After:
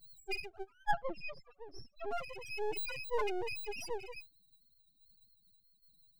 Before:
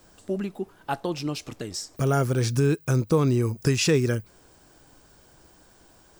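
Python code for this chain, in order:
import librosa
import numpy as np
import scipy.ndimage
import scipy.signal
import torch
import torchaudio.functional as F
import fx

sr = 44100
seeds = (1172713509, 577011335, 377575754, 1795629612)

y = fx.rattle_buzz(x, sr, strikes_db=-31.0, level_db=-19.0)
y = scipy.signal.sosfilt(scipy.signal.cheby1(2, 1.0, 570.0, 'highpass', fs=sr, output='sos'), y)
y = fx.tilt_eq(y, sr, slope=2.0)
y = fx.rider(y, sr, range_db=4, speed_s=0.5)
y = fx.tremolo_shape(y, sr, shape='saw_down', hz=1.2, depth_pct=50)
y = fx.spec_topn(y, sr, count=1)
y = np.maximum(y, 0.0)
y = fx.air_absorb(y, sr, metres=240.0, at=(0.91, 2.11))
y = fx.sustainer(y, sr, db_per_s=34.0, at=(2.75, 3.65), fade=0.02)
y = F.gain(torch.from_numpy(y), 8.0).numpy()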